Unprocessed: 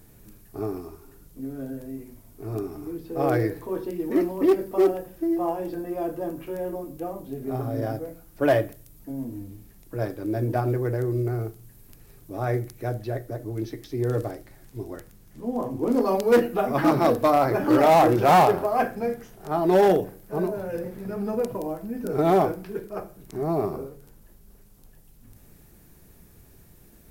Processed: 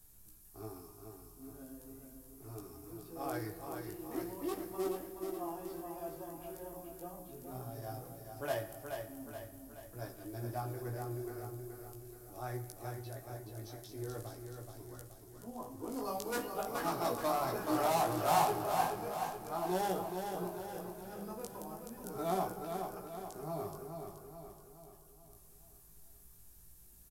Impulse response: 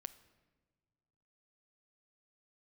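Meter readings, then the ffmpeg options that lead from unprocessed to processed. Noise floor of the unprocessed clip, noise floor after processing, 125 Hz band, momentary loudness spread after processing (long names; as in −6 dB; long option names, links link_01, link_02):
−53 dBFS, −59 dBFS, −15.0 dB, 20 LU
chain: -filter_complex "[1:a]atrim=start_sample=2205,asetrate=25578,aresample=44100[link_01];[0:a][link_01]afir=irnorm=-1:irlink=0,acrossover=split=290|5900[link_02][link_03][link_04];[link_04]acontrast=84[link_05];[link_02][link_03][link_05]amix=inputs=3:normalize=0,equalizer=frequency=125:width_type=o:width=1:gain=-7,equalizer=frequency=250:width_type=o:width=1:gain=-8,equalizer=frequency=500:width_type=o:width=1:gain=-9,equalizer=frequency=2000:width_type=o:width=1:gain=-7,flanger=delay=16:depth=3.5:speed=0.4,aecho=1:1:426|852|1278|1704|2130|2556:0.501|0.256|0.13|0.0665|0.0339|0.0173,volume=-3.5dB"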